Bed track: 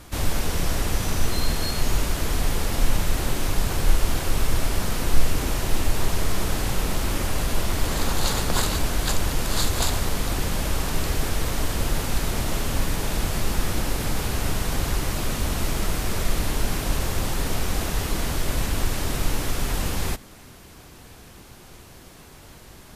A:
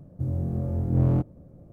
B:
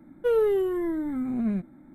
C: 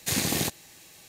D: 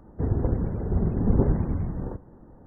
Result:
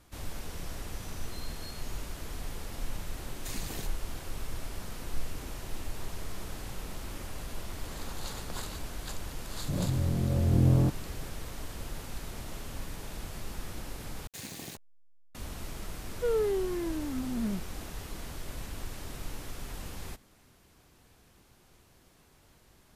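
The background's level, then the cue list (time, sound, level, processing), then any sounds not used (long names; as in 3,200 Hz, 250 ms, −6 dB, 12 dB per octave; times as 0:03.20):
bed track −15.5 dB
0:03.38: mix in C −13 dB + spectral dynamics exaggerated over time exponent 1.5
0:09.68: mix in A −2.5 dB + background raised ahead of every attack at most 20 dB per second
0:14.27: overwrite with C −16 dB + hold until the input has moved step −30.5 dBFS
0:15.98: mix in B −6 dB
not used: D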